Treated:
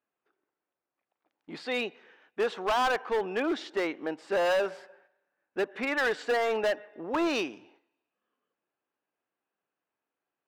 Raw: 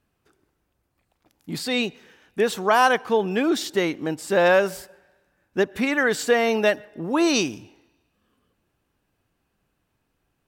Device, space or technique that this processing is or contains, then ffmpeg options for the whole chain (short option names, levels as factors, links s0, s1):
walkie-talkie: -af "highpass=410,lowpass=2500,asoftclip=type=hard:threshold=0.0944,agate=range=0.398:threshold=0.00112:ratio=16:detection=peak,volume=0.75"